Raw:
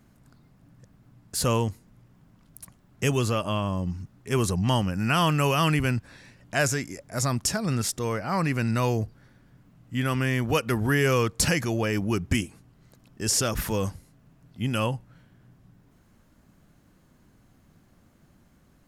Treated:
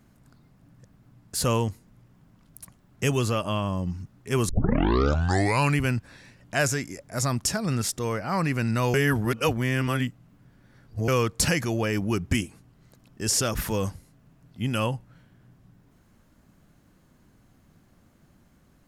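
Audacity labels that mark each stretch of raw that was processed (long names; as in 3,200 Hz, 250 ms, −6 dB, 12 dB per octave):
4.490000	4.490000	tape start 1.30 s
8.940000	11.080000	reverse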